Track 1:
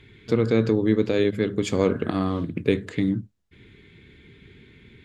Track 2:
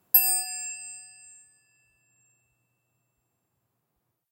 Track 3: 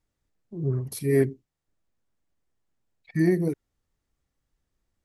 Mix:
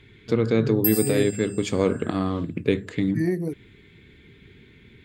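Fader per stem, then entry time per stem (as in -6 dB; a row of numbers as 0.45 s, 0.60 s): -0.5 dB, -6.0 dB, -2.5 dB; 0.00 s, 0.70 s, 0.00 s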